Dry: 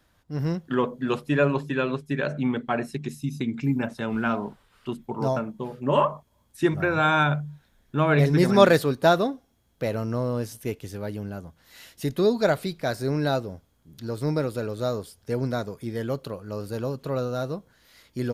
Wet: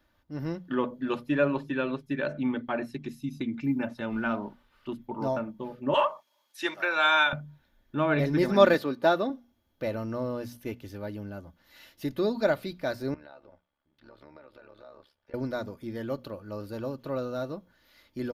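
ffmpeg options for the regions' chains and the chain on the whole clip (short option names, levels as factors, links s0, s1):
-filter_complex "[0:a]asettb=1/sr,asplit=3[s0][s1][s2];[s0]atrim=end=5.944[s3];[s1]atrim=start=5.94:end=7.33,asetpts=PTS-STARTPTS,afade=t=in:d=0.004:c=qsin,afade=t=out:st=1.386:d=0.004:c=qsin,highpass=580,equalizer=f=5300:w=0.37:g=11[s4];[s2]atrim=start=7.326[s5];[s3][s4]acrossfade=d=0.004:c1=hsin:c2=qsin[s6];[s6][s5]acrossfade=d=0.004:c1=qsin:c2=hsin,asettb=1/sr,asplit=3[s7][s8][s9];[s7]atrim=end=8.744[s10];[s8]atrim=start=8.74:end=9.3,asetpts=PTS-STARTPTS,afade=t=in:d=0.004:c=qsin,afade=t=out:st=0.556:d=0.004:c=qsin,highpass=180,highshelf=f=7300:g=-6[s11];[s9]atrim=start=9.296[s12];[s10][s11]acrossfade=d=0.004:c1=hsin:c2=qsin[s13];[s13][s12]acrossfade=d=0.004:c1=qsin:c2=hsin,asettb=1/sr,asplit=3[s14][s15][s16];[s14]atrim=end=13.144[s17];[s15]atrim=start=13.14:end=15.34,asetpts=PTS-STARTPTS,afade=t=in:d=0.004:c=qsin,afade=t=out:st=2.196:d=0.004:c=qsin,acrossover=split=550 3700:gain=0.178 1 0.0794[s18][s19][s20];[s18][s19][s20]amix=inputs=3:normalize=0,acompressor=threshold=0.00891:ratio=4:attack=3.2:release=140:knee=1:detection=peak,tremolo=f=71:d=0.857[s21];[s16]atrim=start=15.336[s22];[s17][s21]acrossfade=d=0.004:c1=hsin:c2=qsin[s23];[s23][s22]acrossfade=d=0.004:c1=qsin:c2=hsin,equalizer=f=8400:w=1.4:g=-13,bandreject=f=60:t=h:w=6,bandreject=f=120:t=h:w=6,bandreject=f=180:t=h:w=6,bandreject=f=240:t=h:w=6,aecho=1:1:3.4:0.42,volume=0.596"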